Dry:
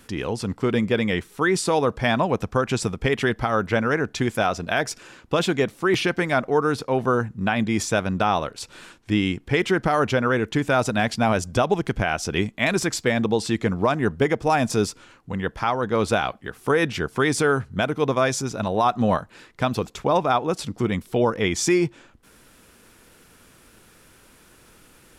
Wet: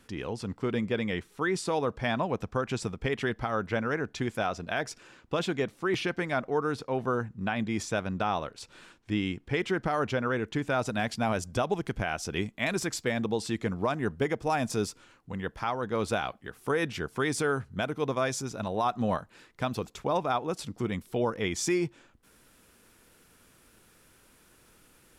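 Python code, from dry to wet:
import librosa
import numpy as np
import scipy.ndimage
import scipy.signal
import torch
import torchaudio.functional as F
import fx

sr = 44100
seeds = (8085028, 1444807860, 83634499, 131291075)

y = fx.high_shelf(x, sr, hz=9800.0, db=fx.steps((0.0, -7.5), (10.86, 3.5)))
y = F.gain(torch.from_numpy(y), -8.0).numpy()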